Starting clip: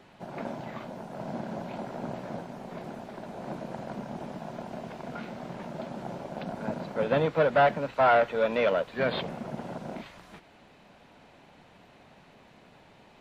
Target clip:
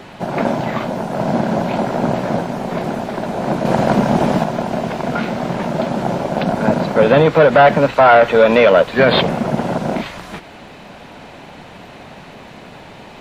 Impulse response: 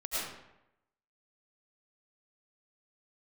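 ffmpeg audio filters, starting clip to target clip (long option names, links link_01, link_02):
-filter_complex "[0:a]asettb=1/sr,asplit=3[link_01][link_02][link_03];[link_01]atrim=end=3.654[link_04];[link_02]atrim=start=3.65:end=4.44,asetpts=PTS-STARTPTS,afade=type=in:duration=0.004:curve=qsin,afade=type=out:start_time=0.786:duration=0.004:curve=qsin,acontrast=32[link_05];[link_03]atrim=start=4.436[link_06];[link_04][link_05]acrossfade=duration=0.004:curve1=hsin:curve2=qsin[link_07];[link_07][link_06]acrossfade=duration=0.004:curve1=qsin:curve2=hsin,alimiter=level_in=19.5dB:limit=-1dB:release=50:level=0:latency=1,volume=-1dB"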